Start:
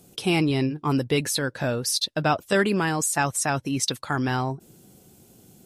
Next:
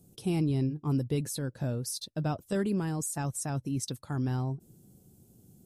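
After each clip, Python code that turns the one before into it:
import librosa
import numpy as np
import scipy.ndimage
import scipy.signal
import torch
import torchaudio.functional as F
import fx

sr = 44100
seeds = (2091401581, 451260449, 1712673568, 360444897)

y = fx.curve_eq(x, sr, hz=(130.0, 2200.0, 9700.0), db=(0, -19, -7))
y = F.gain(torch.from_numpy(y), -1.5).numpy()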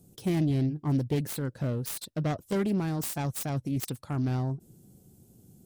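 y = fx.self_delay(x, sr, depth_ms=0.27)
y = F.gain(torch.from_numpy(y), 2.0).numpy()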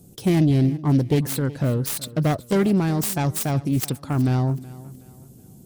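y = fx.echo_feedback(x, sr, ms=371, feedback_pct=37, wet_db=-19.0)
y = F.gain(torch.from_numpy(y), 8.5).numpy()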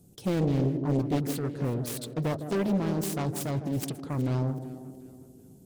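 y = fx.echo_banded(x, sr, ms=158, feedback_pct=74, hz=360.0, wet_db=-6.5)
y = fx.doppler_dist(y, sr, depth_ms=0.75)
y = F.gain(torch.from_numpy(y), -8.0).numpy()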